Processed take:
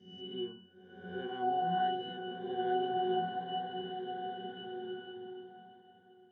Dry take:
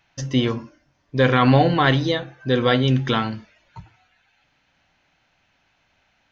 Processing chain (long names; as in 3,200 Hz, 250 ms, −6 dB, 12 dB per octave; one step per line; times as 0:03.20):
peak hold with a rise ahead of every peak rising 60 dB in 1.06 s
high-pass filter 160 Hz 24 dB per octave
resonances in every octave F#, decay 0.65 s
feedback echo with a long and a short gap by turns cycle 1,294 ms, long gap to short 1.5 to 1, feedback 40%, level −22 dB
slow-attack reverb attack 1,770 ms, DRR 2 dB